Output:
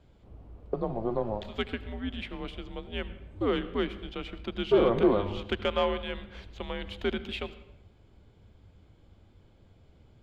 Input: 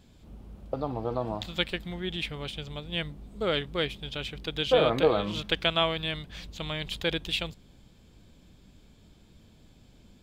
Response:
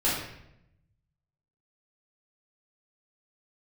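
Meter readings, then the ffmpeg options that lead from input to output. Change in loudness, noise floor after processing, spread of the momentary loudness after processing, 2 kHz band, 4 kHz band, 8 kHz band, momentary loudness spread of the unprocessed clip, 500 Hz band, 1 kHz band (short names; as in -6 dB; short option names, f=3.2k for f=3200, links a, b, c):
-1.5 dB, -60 dBFS, 15 LU, -5.0 dB, -9.0 dB, under -10 dB, 14 LU, 0.0 dB, -2.0 dB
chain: -filter_complex "[0:a]tiltshelf=f=970:g=8,asplit=2[a][b];[1:a]atrim=start_sample=2205,adelay=74[c];[b][c]afir=irnorm=-1:irlink=0,volume=-26dB[d];[a][d]amix=inputs=2:normalize=0,afreqshift=-110,asplit=2[e][f];[f]highpass=f=720:p=1,volume=13dB,asoftclip=type=tanh:threshold=-6dB[g];[e][g]amix=inputs=2:normalize=0,lowpass=f=2.1k:p=1,volume=-6dB,volume=-5dB"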